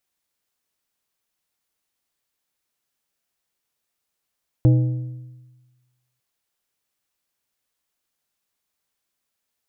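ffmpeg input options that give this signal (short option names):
-f lavfi -i "aevalsrc='0.335*pow(10,-3*t/1.31)*sin(2*PI*125*t)+0.126*pow(10,-3*t/0.995)*sin(2*PI*312.5*t)+0.0473*pow(10,-3*t/0.864)*sin(2*PI*500*t)+0.0178*pow(10,-3*t/0.808)*sin(2*PI*625*t)+0.00668*pow(10,-3*t/0.747)*sin(2*PI*812.5*t)':d=1.55:s=44100"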